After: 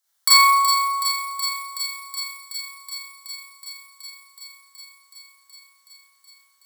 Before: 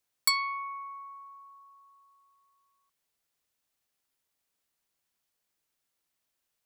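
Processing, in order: peaking EQ 2.5 kHz -13 dB 0.35 oct; on a send: feedback echo behind a high-pass 373 ms, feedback 80%, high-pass 2.6 kHz, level -7.5 dB; on the sum: short-mantissa float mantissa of 4-bit; high-pass 1 kHz 12 dB/octave; Schroeder reverb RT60 0.99 s, combs from 28 ms, DRR -7.5 dB; trim +5 dB

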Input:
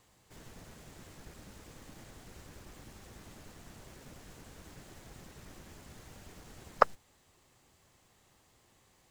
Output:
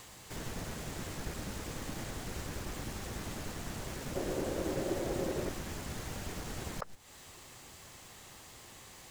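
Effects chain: slow attack 425 ms; 4.15–5.49 s: small resonant body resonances 370/530 Hz, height 15 dB, ringing for 30 ms; tape noise reduction on one side only encoder only; trim +11.5 dB

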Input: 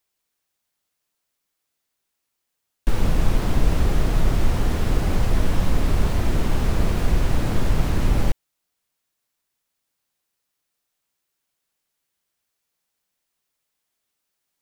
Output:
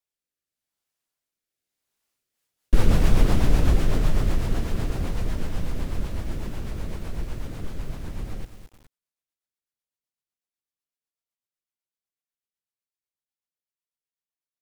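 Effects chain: Doppler pass-by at 2.95 s, 21 m/s, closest 18 m; rotary cabinet horn 0.85 Hz, later 8 Hz, at 1.99 s; bit-crushed delay 212 ms, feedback 35%, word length 8-bit, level -11 dB; trim +3.5 dB

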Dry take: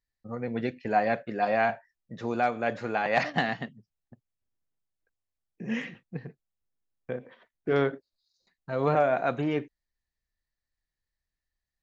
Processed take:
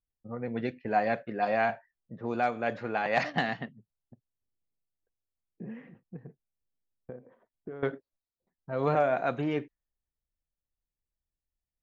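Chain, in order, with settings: 5.64–7.83 s: compression 8:1, threshold -37 dBFS, peak gain reduction 17 dB; level-controlled noise filter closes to 660 Hz, open at -22 dBFS; trim -2 dB

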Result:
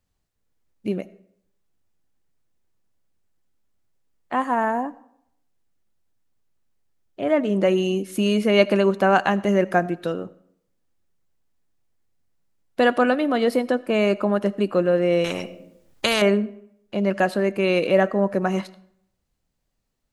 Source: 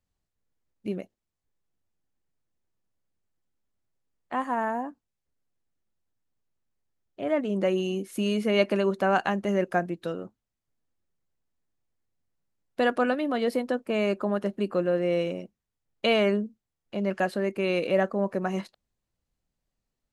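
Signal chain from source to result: on a send at -19.5 dB: reverberation RT60 0.70 s, pre-delay 35 ms; 15.24–16.22 s: on the sum: spectrum-flattening compressor 2:1; trim +6 dB

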